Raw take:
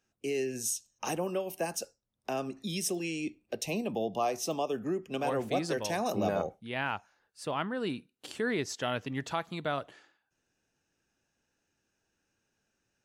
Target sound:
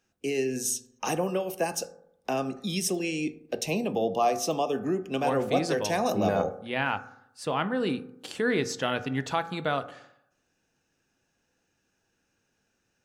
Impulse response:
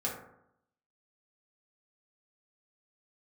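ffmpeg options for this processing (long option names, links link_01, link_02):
-filter_complex "[0:a]bandreject=frequency=60:width_type=h:width=6,bandreject=frequency=120:width_type=h:width=6,asplit=2[link_01][link_02];[1:a]atrim=start_sample=2205,lowpass=8300[link_03];[link_02][link_03]afir=irnorm=-1:irlink=0,volume=-12.5dB[link_04];[link_01][link_04]amix=inputs=2:normalize=0,volume=3dB"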